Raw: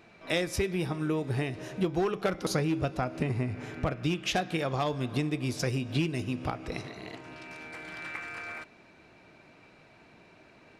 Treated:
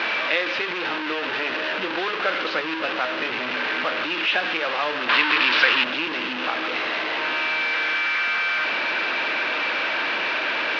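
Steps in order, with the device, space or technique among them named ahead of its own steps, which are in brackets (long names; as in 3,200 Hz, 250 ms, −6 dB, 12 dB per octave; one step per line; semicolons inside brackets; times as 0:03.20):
digital answering machine (band-pass filter 360–3,300 Hz; linear delta modulator 32 kbit/s, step −26.5 dBFS; loudspeaker in its box 370–3,900 Hz, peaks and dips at 400 Hz −7 dB, 710 Hz −7 dB, 1,600 Hz +5 dB, 2,700 Hz +5 dB)
0:05.09–0:05.84: flat-topped bell 2,200 Hz +9 dB 2.8 octaves
level +8 dB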